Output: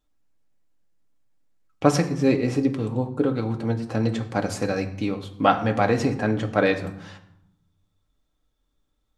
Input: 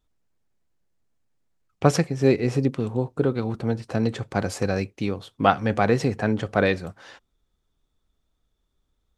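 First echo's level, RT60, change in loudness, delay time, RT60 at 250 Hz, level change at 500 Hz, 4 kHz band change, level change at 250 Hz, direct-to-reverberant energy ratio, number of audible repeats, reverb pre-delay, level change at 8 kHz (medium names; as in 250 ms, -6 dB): no echo, 0.80 s, +0.5 dB, no echo, 1.2 s, -0.5 dB, 0.0 dB, +1.5 dB, 4.0 dB, no echo, 4 ms, 0.0 dB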